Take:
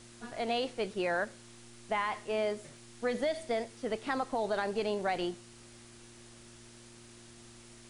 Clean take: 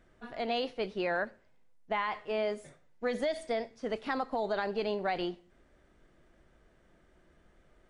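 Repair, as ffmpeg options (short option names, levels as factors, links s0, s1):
-af "adeclick=t=4,bandreject=f=117.3:t=h:w=4,bandreject=f=234.6:t=h:w=4,bandreject=f=351.9:t=h:w=4,afwtdn=0.002"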